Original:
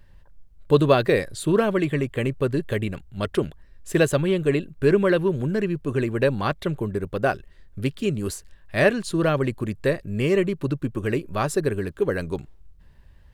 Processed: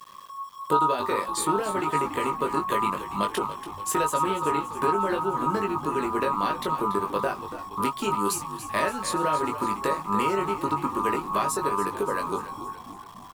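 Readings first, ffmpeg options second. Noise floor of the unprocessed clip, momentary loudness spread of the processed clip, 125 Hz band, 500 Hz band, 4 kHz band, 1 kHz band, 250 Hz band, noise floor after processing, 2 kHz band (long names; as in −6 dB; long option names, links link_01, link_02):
−52 dBFS, 8 LU, −13.0 dB, −7.0 dB, −1.5 dB, +8.5 dB, −6.5 dB, −43 dBFS, −5.0 dB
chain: -filter_complex "[0:a]aemphasis=mode=production:type=cd,acrossover=split=180[link_01][link_02];[link_01]aeval=exprs='val(0)*sin(2*PI*1100*n/s)':channel_layout=same[link_03];[link_02]acompressor=threshold=-32dB:ratio=6[link_04];[link_03][link_04]amix=inputs=2:normalize=0,asplit=2[link_05][link_06];[link_06]adelay=20,volume=-4.5dB[link_07];[link_05][link_07]amix=inputs=2:normalize=0,aeval=exprs='val(0)*gte(abs(val(0)),0.00282)':channel_layout=same,asplit=2[link_08][link_09];[link_09]asplit=6[link_10][link_11][link_12][link_13][link_14][link_15];[link_10]adelay=285,afreqshift=-53,volume=-12dB[link_16];[link_11]adelay=570,afreqshift=-106,volume=-16.7dB[link_17];[link_12]adelay=855,afreqshift=-159,volume=-21.5dB[link_18];[link_13]adelay=1140,afreqshift=-212,volume=-26.2dB[link_19];[link_14]adelay=1425,afreqshift=-265,volume=-30.9dB[link_20];[link_15]adelay=1710,afreqshift=-318,volume=-35.7dB[link_21];[link_16][link_17][link_18][link_19][link_20][link_21]amix=inputs=6:normalize=0[link_22];[link_08][link_22]amix=inputs=2:normalize=0,volume=4.5dB"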